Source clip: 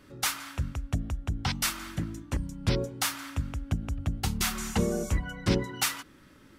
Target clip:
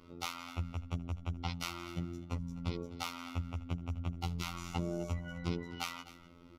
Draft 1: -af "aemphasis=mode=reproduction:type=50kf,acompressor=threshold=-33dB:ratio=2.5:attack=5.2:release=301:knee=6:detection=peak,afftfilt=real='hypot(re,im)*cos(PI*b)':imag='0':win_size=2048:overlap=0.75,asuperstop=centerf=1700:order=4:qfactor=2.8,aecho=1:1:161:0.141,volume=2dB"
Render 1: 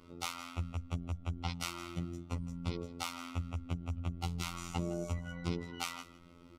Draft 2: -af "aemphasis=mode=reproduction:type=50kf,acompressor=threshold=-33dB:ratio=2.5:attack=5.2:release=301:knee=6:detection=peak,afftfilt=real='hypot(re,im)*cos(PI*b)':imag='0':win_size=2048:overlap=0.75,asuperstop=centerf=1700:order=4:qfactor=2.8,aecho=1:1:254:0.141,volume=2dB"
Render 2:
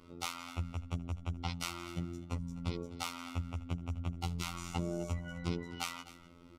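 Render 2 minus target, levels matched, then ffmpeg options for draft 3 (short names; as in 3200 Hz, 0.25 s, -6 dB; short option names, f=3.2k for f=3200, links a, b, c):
8000 Hz band +3.0 dB
-af "aemphasis=mode=reproduction:type=50kf,acompressor=threshold=-33dB:ratio=2.5:attack=5.2:release=301:knee=6:detection=peak,afftfilt=real='hypot(re,im)*cos(PI*b)':imag='0':win_size=2048:overlap=0.75,asuperstop=centerf=1700:order=4:qfactor=2.8,equalizer=f=8.5k:t=o:w=0.5:g=-8,aecho=1:1:254:0.141,volume=2dB"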